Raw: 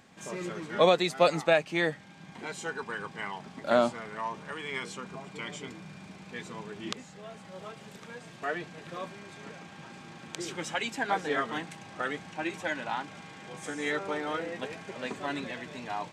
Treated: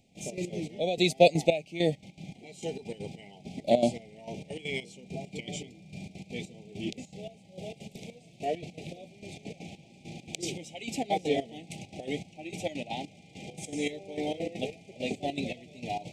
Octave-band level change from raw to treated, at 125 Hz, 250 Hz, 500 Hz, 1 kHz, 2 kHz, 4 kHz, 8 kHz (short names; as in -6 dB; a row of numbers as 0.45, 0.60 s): +4.5, +2.5, +0.5, -3.0, -6.5, 0.0, +1.5 dB